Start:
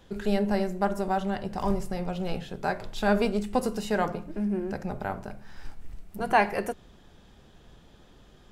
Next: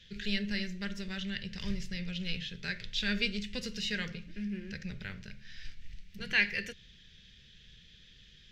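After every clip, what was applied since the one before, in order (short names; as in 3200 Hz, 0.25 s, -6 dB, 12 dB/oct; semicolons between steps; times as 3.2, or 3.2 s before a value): EQ curve 180 Hz 0 dB, 310 Hz -14 dB, 490 Hz -9 dB, 740 Hz -28 dB, 1200 Hz -15 dB, 1800 Hz +8 dB, 3500 Hz +13 dB, 6100 Hz +7 dB, 9500 Hz -13 dB, 14000 Hz -9 dB; gain -5 dB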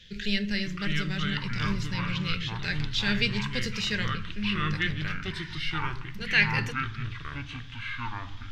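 echoes that change speed 0.512 s, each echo -5 st, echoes 2; gain +5 dB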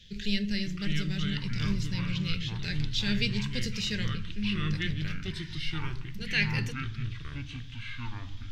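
bell 1100 Hz -12 dB 2.2 oct; gain +1 dB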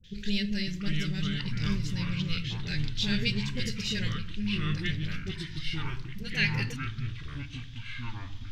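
dispersion highs, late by 41 ms, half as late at 680 Hz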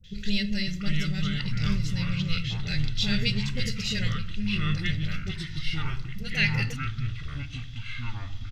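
comb 1.5 ms, depth 43%; gain +2 dB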